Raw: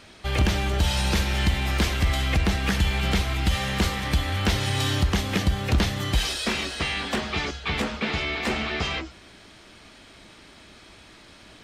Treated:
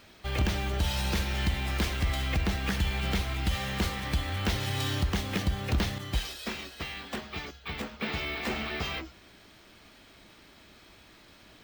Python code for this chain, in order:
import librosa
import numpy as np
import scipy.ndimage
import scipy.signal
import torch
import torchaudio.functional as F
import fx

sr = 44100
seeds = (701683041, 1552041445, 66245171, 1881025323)

y = np.repeat(x[::2], 2)[:len(x)]
y = fx.upward_expand(y, sr, threshold_db=-35.0, expansion=1.5, at=(5.98, 8.0))
y = y * 10.0 ** (-6.0 / 20.0)